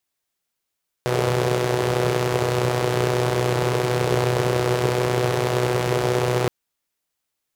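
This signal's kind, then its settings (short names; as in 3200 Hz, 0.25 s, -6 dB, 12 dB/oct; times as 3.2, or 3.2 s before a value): four-cylinder engine model, steady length 5.42 s, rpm 3700, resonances 140/400 Hz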